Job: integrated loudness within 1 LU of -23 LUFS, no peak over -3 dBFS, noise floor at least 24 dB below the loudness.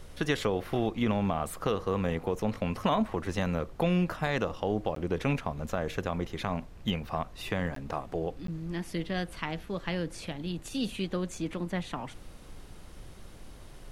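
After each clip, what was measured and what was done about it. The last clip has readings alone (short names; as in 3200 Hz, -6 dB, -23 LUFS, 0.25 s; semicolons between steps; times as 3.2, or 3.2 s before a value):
dropouts 3; longest dropout 13 ms; noise floor -48 dBFS; noise floor target -57 dBFS; loudness -32.5 LUFS; peak -14.5 dBFS; loudness target -23.0 LUFS
-> interpolate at 4.95/7.75/8.47, 13 ms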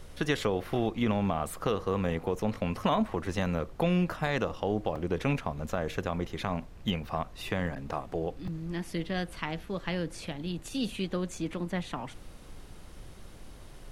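dropouts 0; noise floor -48 dBFS; noise floor target -57 dBFS
-> noise print and reduce 9 dB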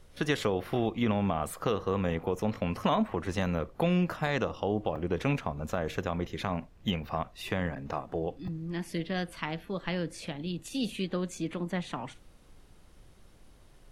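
noise floor -56 dBFS; noise floor target -57 dBFS
-> noise print and reduce 6 dB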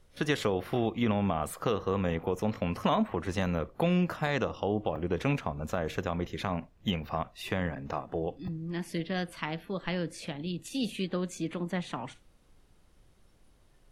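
noise floor -62 dBFS; loudness -32.5 LUFS; peak -15.0 dBFS; loudness target -23.0 LUFS
-> gain +9.5 dB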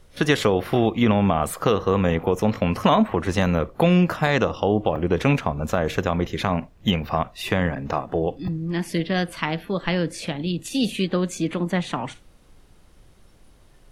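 loudness -23.0 LUFS; peak -5.5 dBFS; noise floor -52 dBFS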